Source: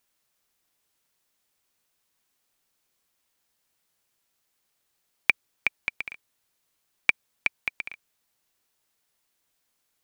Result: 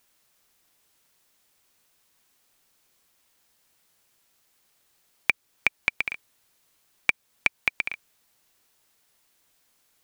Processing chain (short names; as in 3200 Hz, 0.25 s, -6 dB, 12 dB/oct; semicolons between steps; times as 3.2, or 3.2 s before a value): in parallel at 0 dB: compressor, threshold -30 dBFS, peak gain reduction 15.5 dB; on the sum: maximiser +3 dB; gain -1 dB